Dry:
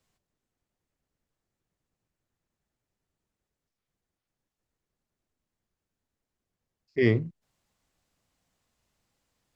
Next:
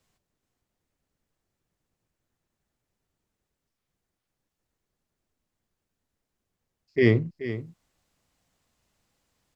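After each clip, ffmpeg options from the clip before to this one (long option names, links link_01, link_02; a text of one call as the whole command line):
ffmpeg -i in.wav -af "aecho=1:1:430:0.237,volume=3dB" out.wav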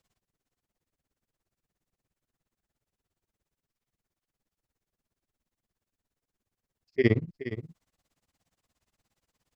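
ffmpeg -i in.wav -af "tremolo=f=17:d=0.97" out.wav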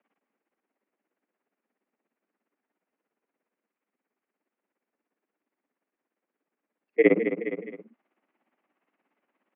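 ffmpeg -i in.wav -af "aecho=1:1:209:0.355,highpass=frequency=170:width_type=q:width=0.5412,highpass=frequency=170:width_type=q:width=1.307,lowpass=frequency=2500:width_type=q:width=0.5176,lowpass=frequency=2500:width_type=q:width=0.7071,lowpass=frequency=2500:width_type=q:width=1.932,afreqshift=63,volume=5dB" out.wav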